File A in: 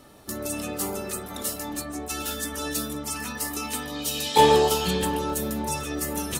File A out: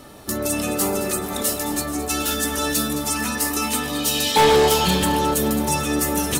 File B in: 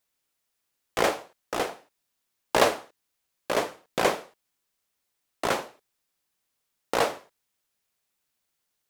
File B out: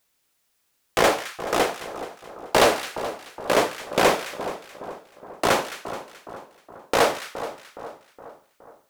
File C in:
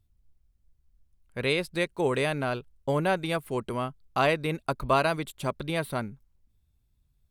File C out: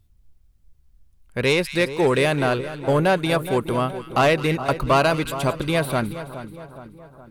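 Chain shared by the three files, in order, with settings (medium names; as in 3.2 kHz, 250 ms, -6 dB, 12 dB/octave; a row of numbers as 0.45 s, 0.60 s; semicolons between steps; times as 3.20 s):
saturation -19 dBFS; two-band feedback delay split 1.4 kHz, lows 417 ms, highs 215 ms, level -12 dB; peak normalisation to -9 dBFS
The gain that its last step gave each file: +8.0 dB, +8.5 dB, +9.0 dB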